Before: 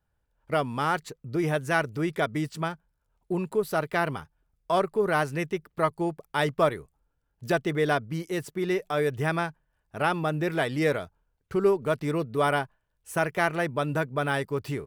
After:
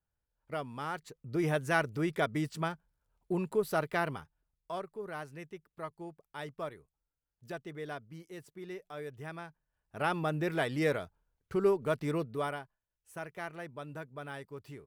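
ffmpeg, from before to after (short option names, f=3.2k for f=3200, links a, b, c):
-af "volume=7.5dB,afade=t=in:st=1.02:d=0.4:silence=0.421697,afade=t=out:st=3.76:d=1.09:silence=0.237137,afade=t=in:st=9.44:d=0.74:silence=0.266073,afade=t=out:st=12.17:d=0.42:silence=0.281838"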